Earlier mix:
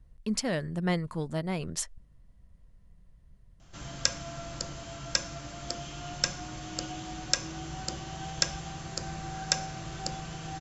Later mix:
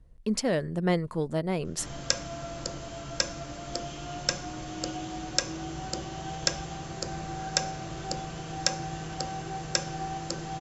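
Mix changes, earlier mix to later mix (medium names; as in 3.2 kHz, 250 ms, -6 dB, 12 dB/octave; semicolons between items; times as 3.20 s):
background: entry -1.95 s; master: add peaking EQ 440 Hz +6.5 dB 1.5 oct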